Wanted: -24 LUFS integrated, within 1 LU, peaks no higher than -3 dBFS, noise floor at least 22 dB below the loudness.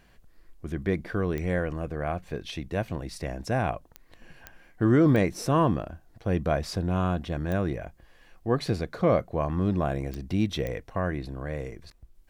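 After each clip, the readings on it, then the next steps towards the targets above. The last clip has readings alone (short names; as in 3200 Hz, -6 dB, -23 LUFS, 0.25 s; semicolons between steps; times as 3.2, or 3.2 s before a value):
clicks 7; loudness -28.0 LUFS; peak -11.5 dBFS; loudness target -24.0 LUFS
-> de-click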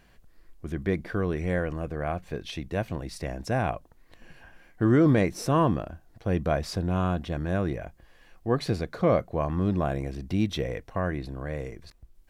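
clicks 0; loudness -28.0 LUFS; peak -11.5 dBFS; loudness target -24.0 LUFS
-> gain +4 dB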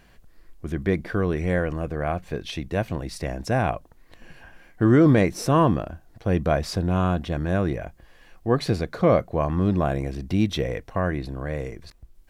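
loudness -24.0 LUFS; peak -7.5 dBFS; noise floor -54 dBFS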